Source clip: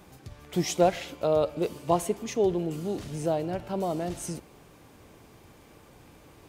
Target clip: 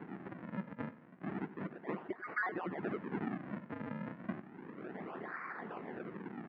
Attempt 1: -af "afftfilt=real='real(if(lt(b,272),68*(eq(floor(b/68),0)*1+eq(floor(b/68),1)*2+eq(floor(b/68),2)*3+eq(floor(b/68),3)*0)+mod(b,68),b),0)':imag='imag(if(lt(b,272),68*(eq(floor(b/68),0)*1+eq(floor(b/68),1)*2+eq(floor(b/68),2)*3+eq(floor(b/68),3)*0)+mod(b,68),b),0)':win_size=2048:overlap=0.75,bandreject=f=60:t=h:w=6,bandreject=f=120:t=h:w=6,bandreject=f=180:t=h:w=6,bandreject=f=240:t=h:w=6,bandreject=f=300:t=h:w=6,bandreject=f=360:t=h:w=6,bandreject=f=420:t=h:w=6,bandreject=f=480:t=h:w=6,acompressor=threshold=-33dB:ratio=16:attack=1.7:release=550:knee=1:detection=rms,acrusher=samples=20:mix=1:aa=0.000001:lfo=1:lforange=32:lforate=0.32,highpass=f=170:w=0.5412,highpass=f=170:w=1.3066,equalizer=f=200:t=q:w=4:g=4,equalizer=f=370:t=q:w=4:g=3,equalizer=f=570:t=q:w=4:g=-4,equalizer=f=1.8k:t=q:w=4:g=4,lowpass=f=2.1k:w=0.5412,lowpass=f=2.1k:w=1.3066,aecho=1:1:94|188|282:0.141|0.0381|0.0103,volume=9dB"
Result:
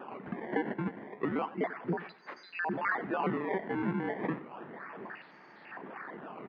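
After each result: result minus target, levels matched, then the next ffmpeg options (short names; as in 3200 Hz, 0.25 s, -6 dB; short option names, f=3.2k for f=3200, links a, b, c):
compressor: peak gain reduction -6.5 dB; decimation with a swept rate: distortion -8 dB
-af "afftfilt=real='real(if(lt(b,272),68*(eq(floor(b/68),0)*1+eq(floor(b/68),1)*2+eq(floor(b/68),2)*3+eq(floor(b/68),3)*0)+mod(b,68),b),0)':imag='imag(if(lt(b,272),68*(eq(floor(b/68),0)*1+eq(floor(b/68),1)*2+eq(floor(b/68),2)*3+eq(floor(b/68),3)*0)+mod(b,68),b),0)':win_size=2048:overlap=0.75,bandreject=f=60:t=h:w=6,bandreject=f=120:t=h:w=6,bandreject=f=180:t=h:w=6,bandreject=f=240:t=h:w=6,bandreject=f=300:t=h:w=6,bandreject=f=360:t=h:w=6,bandreject=f=420:t=h:w=6,bandreject=f=480:t=h:w=6,acompressor=threshold=-40dB:ratio=16:attack=1.7:release=550:knee=1:detection=rms,acrusher=samples=20:mix=1:aa=0.000001:lfo=1:lforange=32:lforate=0.32,highpass=f=170:w=0.5412,highpass=f=170:w=1.3066,equalizer=f=200:t=q:w=4:g=4,equalizer=f=370:t=q:w=4:g=3,equalizer=f=570:t=q:w=4:g=-4,equalizer=f=1.8k:t=q:w=4:g=4,lowpass=f=2.1k:w=0.5412,lowpass=f=2.1k:w=1.3066,aecho=1:1:94|188|282:0.141|0.0381|0.0103,volume=9dB"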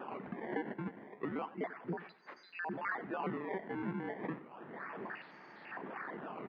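decimation with a swept rate: distortion -10 dB
-af "afftfilt=real='real(if(lt(b,272),68*(eq(floor(b/68),0)*1+eq(floor(b/68),1)*2+eq(floor(b/68),2)*3+eq(floor(b/68),3)*0)+mod(b,68),b),0)':imag='imag(if(lt(b,272),68*(eq(floor(b/68),0)*1+eq(floor(b/68),1)*2+eq(floor(b/68),2)*3+eq(floor(b/68),3)*0)+mod(b,68),b),0)':win_size=2048:overlap=0.75,bandreject=f=60:t=h:w=6,bandreject=f=120:t=h:w=6,bandreject=f=180:t=h:w=6,bandreject=f=240:t=h:w=6,bandreject=f=300:t=h:w=6,bandreject=f=360:t=h:w=6,bandreject=f=420:t=h:w=6,bandreject=f=480:t=h:w=6,acompressor=threshold=-40dB:ratio=16:attack=1.7:release=550:knee=1:detection=rms,acrusher=samples=66:mix=1:aa=0.000001:lfo=1:lforange=106:lforate=0.32,highpass=f=170:w=0.5412,highpass=f=170:w=1.3066,equalizer=f=200:t=q:w=4:g=4,equalizer=f=370:t=q:w=4:g=3,equalizer=f=570:t=q:w=4:g=-4,equalizer=f=1.8k:t=q:w=4:g=4,lowpass=f=2.1k:w=0.5412,lowpass=f=2.1k:w=1.3066,aecho=1:1:94|188|282:0.141|0.0381|0.0103,volume=9dB"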